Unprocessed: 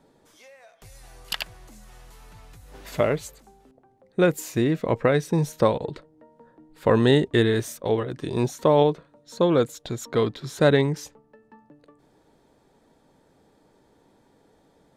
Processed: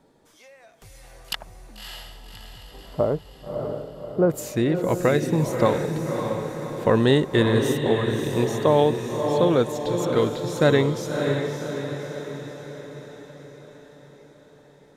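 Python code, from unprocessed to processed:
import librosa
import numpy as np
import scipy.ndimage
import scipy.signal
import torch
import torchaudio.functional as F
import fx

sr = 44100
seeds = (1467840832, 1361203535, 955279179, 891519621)

y = fx.lowpass(x, sr, hz=1100.0, slope=24, at=(1.35, 4.3))
y = fx.echo_diffused(y, sr, ms=592, feedback_pct=55, wet_db=-5)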